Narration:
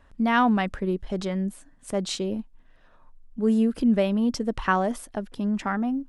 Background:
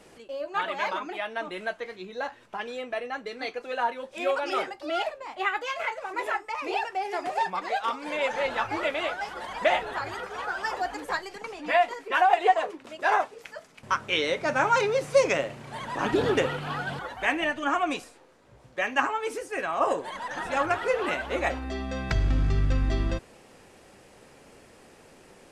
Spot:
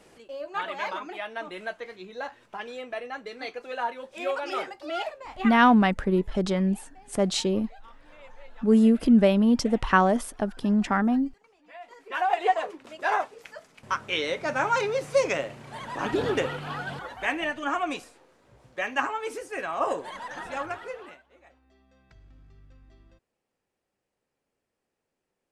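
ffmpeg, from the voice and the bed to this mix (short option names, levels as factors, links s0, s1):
-filter_complex "[0:a]adelay=5250,volume=1.41[s0];[1:a]volume=8.91,afade=t=out:st=5.35:d=0.38:silence=0.0891251,afade=t=in:st=11.8:d=0.63:silence=0.0841395,afade=t=out:st=20.14:d=1.09:silence=0.0398107[s1];[s0][s1]amix=inputs=2:normalize=0"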